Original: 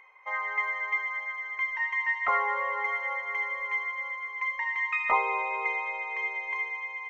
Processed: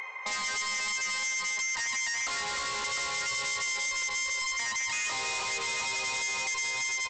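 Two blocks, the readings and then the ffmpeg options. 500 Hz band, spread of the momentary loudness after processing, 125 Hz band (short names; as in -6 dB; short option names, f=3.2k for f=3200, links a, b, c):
-5.0 dB, 1 LU, n/a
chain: -filter_complex "[0:a]highpass=110,acontrast=54,asplit=2[a][b];[b]aecho=0:1:303|701:0.631|0.376[c];[a][c]amix=inputs=2:normalize=0,alimiter=limit=-19dB:level=0:latency=1:release=120,lowshelf=f=410:g=7,aresample=16000,volume=34dB,asoftclip=hard,volume=-34dB,aresample=44100,acompressor=threshold=-43dB:ratio=6,crystalizer=i=4:c=0,volume=6dB"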